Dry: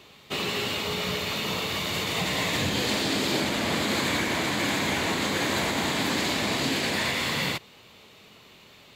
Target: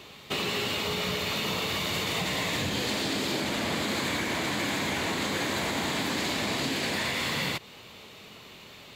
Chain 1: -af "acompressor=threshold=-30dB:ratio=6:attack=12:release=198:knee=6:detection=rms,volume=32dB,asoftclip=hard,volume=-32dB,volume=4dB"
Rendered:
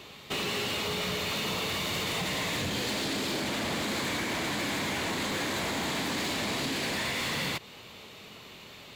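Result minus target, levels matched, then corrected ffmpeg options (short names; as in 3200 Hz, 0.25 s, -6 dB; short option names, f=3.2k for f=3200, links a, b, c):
overloaded stage: distortion +15 dB
-af "acompressor=threshold=-30dB:ratio=6:attack=12:release=198:knee=6:detection=rms,volume=26dB,asoftclip=hard,volume=-26dB,volume=4dB"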